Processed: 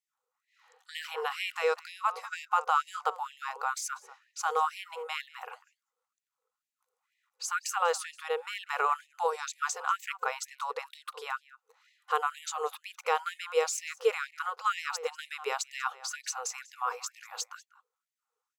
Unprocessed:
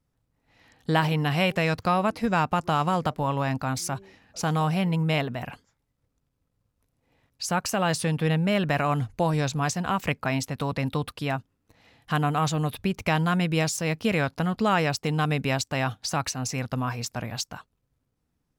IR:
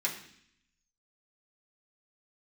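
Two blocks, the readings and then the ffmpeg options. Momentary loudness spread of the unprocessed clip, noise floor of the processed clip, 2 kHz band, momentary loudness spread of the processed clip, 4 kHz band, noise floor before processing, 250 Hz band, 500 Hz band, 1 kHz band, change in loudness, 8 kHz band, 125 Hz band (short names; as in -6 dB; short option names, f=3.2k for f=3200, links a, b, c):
8 LU, under -85 dBFS, -5.5 dB, 11 LU, -7.0 dB, -77 dBFS, under -40 dB, -5.5 dB, -3.5 dB, -7.0 dB, -3.0 dB, under -40 dB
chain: -filter_complex "[0:a]superequalizer=7b=3.98:8b=0.501:9b=2:10b=3.16:15b=1.78,asplit=2[a][b];[b]adelay=192.4,volume=-18dB,highshelf=f=4k:g=-4.33[c];[a][c]amix=inputs=2:normalize=0,afftfilt=real='re*gte(b*sr/1024,410*pow(1800/410,0.5+0.5*sin(2*PI*2.1*pts/sr)))':imag='im*gte(b*sr/1024,410*pow(1800/410,0.5+0.5*sin(2*PI*2.1*pts/sr)))':win_size=1024:overlap=0.75,volume=-7dB"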